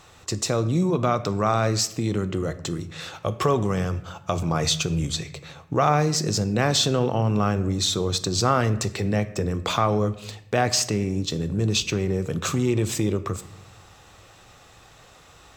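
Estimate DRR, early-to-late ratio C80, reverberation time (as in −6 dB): 11.5 dB, 17.0 dB, 0.80 s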